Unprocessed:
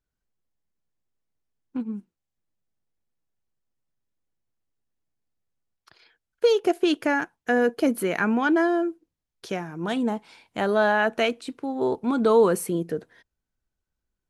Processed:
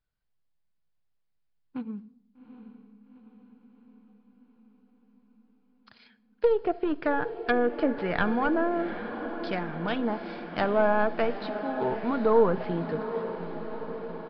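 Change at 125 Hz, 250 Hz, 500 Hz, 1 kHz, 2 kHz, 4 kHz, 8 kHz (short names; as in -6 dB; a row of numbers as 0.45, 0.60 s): -0.5 dB, -4.5 dB, -3.0 dB, -1.5 dB, -5.0 dB, -8.5 dB, under -35 dB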